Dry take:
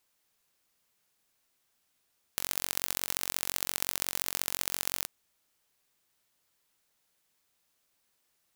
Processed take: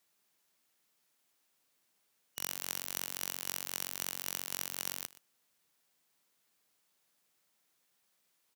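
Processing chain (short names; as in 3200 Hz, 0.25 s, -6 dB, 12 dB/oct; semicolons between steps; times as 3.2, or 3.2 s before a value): four-band scrambler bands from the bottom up 3412; Chebyshev high-pass 160 Hz, order 2; limiter -12.5 dBFS, peak gain reduction 10 dB; echo 0.122 s -18.5 dB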